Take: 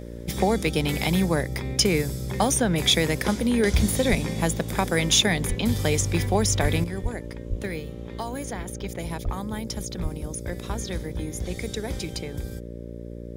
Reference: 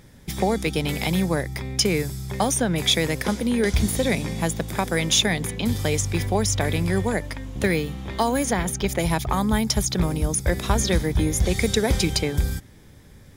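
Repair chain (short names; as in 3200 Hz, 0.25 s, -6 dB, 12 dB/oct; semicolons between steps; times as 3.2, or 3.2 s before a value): de-hum 58.4 Hz, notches 10; de-plosive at 4.09/5.48/6.61/7.02/7.49/9.24/10.02; gain 0 dB, from 6.84 s +10.5 dB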